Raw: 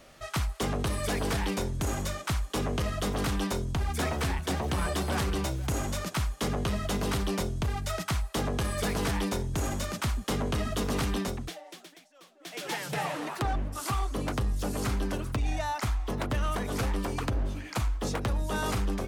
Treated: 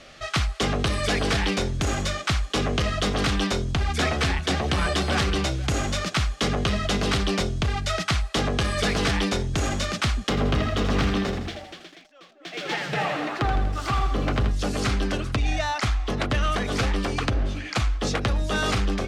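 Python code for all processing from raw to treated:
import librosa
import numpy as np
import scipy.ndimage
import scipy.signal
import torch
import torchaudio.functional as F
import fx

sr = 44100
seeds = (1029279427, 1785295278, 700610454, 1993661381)

y = fx.chain(x, sr, fx.high_shelf(hz=3900.0, db=-11.0),
    fx.resample_bad(factor=2, down='filtered', up='zero_stuff'),
    fx.echo_crushed(ms=81, feedback_pct=55, bits=8, wet_db=-7.5), at=(10.29, 14.51))
y = scipy.signal.sosfilt(scipy.signal.butter(2, 4600.0, 'lowpass', fs=sr, output='sos'), y)
y = fx.high_shelf(y, sr, hz=2000.0, db=9.0)
y = fx.notch(y, sr, hz=950.0, q=7.7)
y = F.gain(torch.from_numpy(y), 5.0).numpy()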